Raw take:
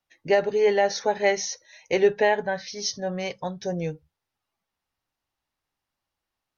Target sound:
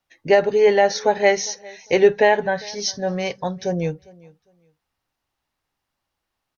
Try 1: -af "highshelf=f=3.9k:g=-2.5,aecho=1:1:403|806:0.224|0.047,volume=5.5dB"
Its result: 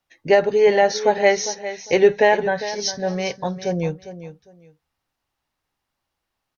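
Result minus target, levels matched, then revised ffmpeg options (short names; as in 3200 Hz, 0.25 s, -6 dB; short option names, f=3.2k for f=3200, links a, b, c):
echo-to-direct +10.5 dB
-af "highshelf=f=3.9k:g=-2.5,aecho=1:1:403|806:0.0668|0.014,volume=5.5dB"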